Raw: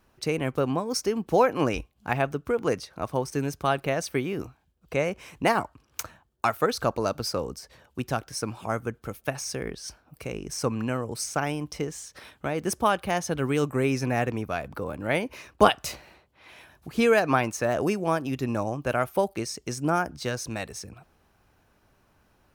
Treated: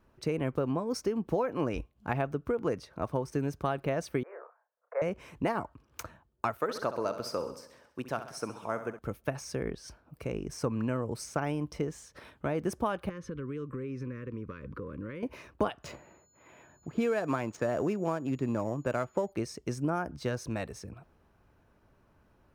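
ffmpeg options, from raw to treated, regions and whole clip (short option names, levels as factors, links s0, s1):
-filter_complex "[0:a]asettb=1/sr,asplit=3[s0][s1][s2];[s0]atrim=end=4.234[s3];[s1]atrim=start=4.23:end=5.02,asetpts=PTS-STARTPTS,afade=t=in:d=0.004:c=qsin,afade=t=out:st=0.786:d=0.004:c=qsin,asuperpass=centerf=980:order=12:qfactor=0.7,asplit=2[s4][s5];[s5]adelay=32,volume=0.531[s6];[s4][s6]amix=inputs=2:normalize=0,atrim=end_sample=34839[s7];[s2]atrim=start=5.016[s8];[s3][s7]acrossfade=d=0.004:c1=hsin:c2=qsin[s9];[s9][s8]acrossfade=d=0.004:c1=qsin:c2=hsin,asettb=1/sr,asplit=3[s10][s11][s12];[s10]atrim=end=6.594[s13];[s11]atrim=start=6.59:end=8.99,asetpts=PTS-STARTPTS,afade=t=in:d=0.004:c=qsin,afade=t=out:st=2.396:d=0.004:c=qsin,highpass=f=450:p=1,aecho=1:1:66|132|198|264|330|396:0.266|0.149|0.0834|0.0467|0.0262|0.0147,atrim=end_sample=105840[s14];[s12]atrim=start=8.986[s15];[s13][s14]acrossfade=d=0.004:c1=hsin:c2=qsin[s16];[s16][s15]acrossfade=d=0.004:c1=qsin:c2=hsin,asettb=1/sr,asplit=3[s17][s18][s19];[s17]atrim=end=13.094[s20];[s18]atrim=start=13.09:end=15.23,asetpts=PTS-STARTPTS,afade=t=in:d=0.004:c=qsin,afade=t=out:st=2.136:d=0.004:c=qsin,aemphasis=mode=reproduction:type=75fm,acompressor=threshold=0.0224:ratio=8:attack=3.2:release=140:knee=1:detection=peak,asuperstop=centerf=740:order=8:qfactor=1.6[s21];[s19]atrim=start=15.226[s22];[s20][s21]acrossfade=d=0.004:c1=hsin:c2=qsin[s23];[s23][s22]acrossfade=d=0.004:c1=qsin:c2=hsin,asettb=1/sr,asplit=3[s24][s25][s26];[s24]atrim=end=15.834[s27];[s25]atrim=start=15.83:end=19.32,asetpts=PTS-STARTPTS,afade=t=in:d=0.004:c=qsin,afade=t=out:st=3.486:d=0.004:c=qsin,aeval=exprs='val(0)+0.0178*sin(2*PI*6900*n/s)':c=same,adynamicsmooth=sensitivity=7:basefreq=1500,highpass=95[s28];[s26]atrim=start=19.316[s29];[s27][s28]acrossfade=d=0.004:c1=hsin:c2=qsin[s30];[s30][s29]acrossfade=d=0.004:c1=qsin:c2=hsin,highshelf=f=2100:g=-11.5,bandreject=f=770:w=12,acompressor=threshold=0.0501:ratio=6"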